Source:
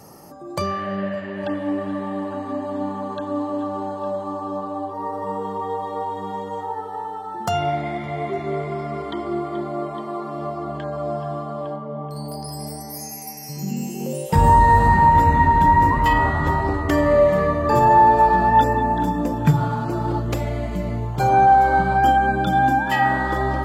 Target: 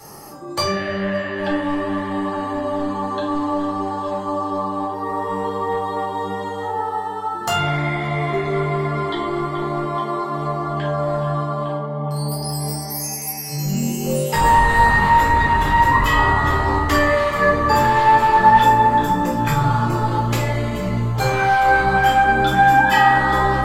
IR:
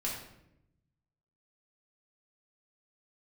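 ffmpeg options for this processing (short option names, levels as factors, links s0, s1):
-filter_complex "[0:a]acrossover=split=840[s0][s1];[s0]volume=15,asoftclip=hard,volume=0.0668[s2];[s1]acontrast=87[s3];[s2][s3]amix=inputs=2:normalize=0[s4];[1:a]atrim=start_sample=2205,asetrate=74970,aresample=44100[s5];[s4][s5]afir=irnorm=-1:irlink=0,volume=1.41"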